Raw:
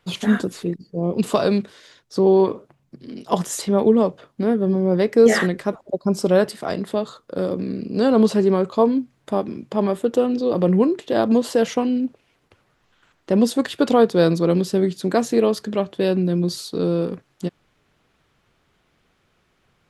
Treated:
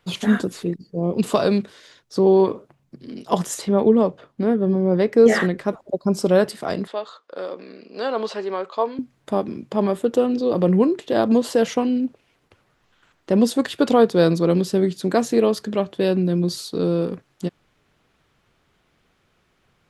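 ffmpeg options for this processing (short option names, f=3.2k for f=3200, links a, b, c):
-filter_complex "[0:a]asettb=1/sr,asplit=3[a][b][c];[a]atrim=end=3.544[d];[b]atrim=start=3.54:end=5.68,asetpts=PTS-STARTPTS,afade=t=in:d=0.004:c=qsin,afade=t=out:st=2.136:d=0.004:c=qsin,highshelf=f=4.6k:g=-7[e];[c]atrim=start=5.676[f];[d][e]acrossfade=d=0.004:c1=hsin:c2=qsin[g];[g][f]acrossfade=d=0.004:c1=qsin:c2=hsin,asettb=1/sr,asplit=3[h][i][j];[h]atrim=end=6.874[k];[i]atrim=start=6.87:end=8.99,asetpts=PTS-STARTPTS,afade=t=in:d=0.004:c=qsin,afade=t=out:st=2.116:d=0.004:c=qsin,highpass=650,lowpass=4.6k[l];[j]atrim=start=8.986[m];[k][l]acrossfade=d=0.004:c1=hsin:c2=qsin[n];[n][m]acrossfade=d=0.004:c1=qsin:c2=hsin"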